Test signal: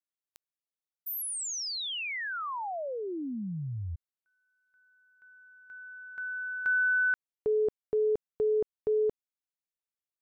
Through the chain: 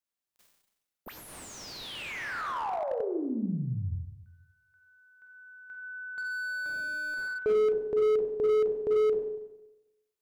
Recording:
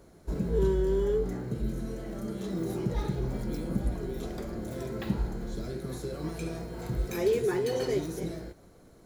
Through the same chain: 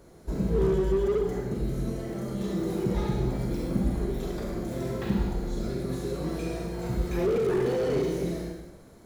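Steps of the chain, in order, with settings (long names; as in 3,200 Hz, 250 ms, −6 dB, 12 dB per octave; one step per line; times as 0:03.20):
four-comb reverb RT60 1 s, combs from 31 ms, DRR 1 dB
slew-rate limiting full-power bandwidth 27 Hz
level +1.5 dB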